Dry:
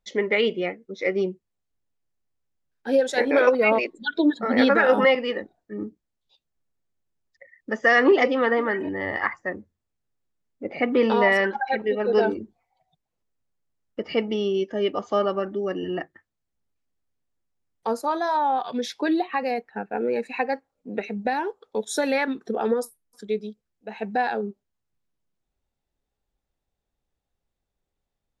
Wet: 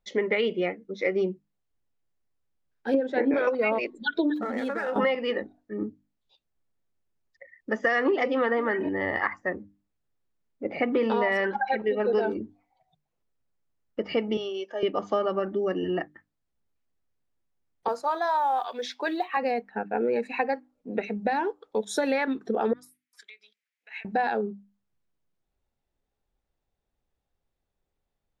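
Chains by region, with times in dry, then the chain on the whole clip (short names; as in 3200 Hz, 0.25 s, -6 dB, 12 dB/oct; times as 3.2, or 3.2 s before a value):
2.94–3.34 LPF 2400 Hz + bell 290 Hz +12 dB 0.89 oct
4.35–4.96 median filter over 9 samples + HPF 140 Hz + compressor 8:1, threshold -27 dBFS
14.37–14.83 Chebyshev band-pass 680–8800 Hz + notch 2000 Hz, Q 8
17.88–19.37 BPF 560–7200 Hz + modulation noise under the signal 34 dB
22.73–24.05 compressor 4:1, threshold -38 dBFS + resonant high-pass 2100 Hz, resonance Q 3.5
whole clip: high shelf 4800 Hz -8 dB; notches 50/100/150/200/250/300 Hz; compressor, threshold -22 dBFS; gain +1 dB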